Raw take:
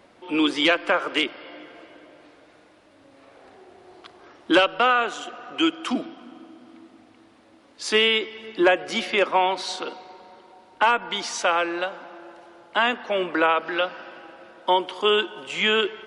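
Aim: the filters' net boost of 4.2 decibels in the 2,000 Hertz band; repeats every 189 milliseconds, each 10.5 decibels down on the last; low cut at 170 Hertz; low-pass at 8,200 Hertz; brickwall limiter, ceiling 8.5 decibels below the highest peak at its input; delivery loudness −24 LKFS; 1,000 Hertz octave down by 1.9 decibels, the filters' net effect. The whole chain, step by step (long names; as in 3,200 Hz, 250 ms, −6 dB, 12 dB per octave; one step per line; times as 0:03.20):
high-pass filter 170 Hz
low-pass filter 8,200 Hz
parametric band 1,000 Hz −5 dB
parametric band 2,000 Hz +7.5 dB
brickwall limiter −12.5 dBFS
repeating echo 189 ms, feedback 30%, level −10.5 dB
level +0.5 dB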